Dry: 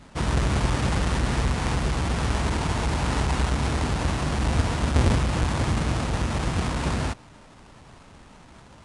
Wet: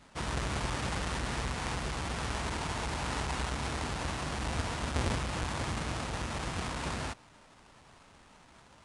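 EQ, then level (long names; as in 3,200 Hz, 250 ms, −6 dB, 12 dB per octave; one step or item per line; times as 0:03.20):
low-shelf EQ 440 Hz −7.5 dB
−5.5 dB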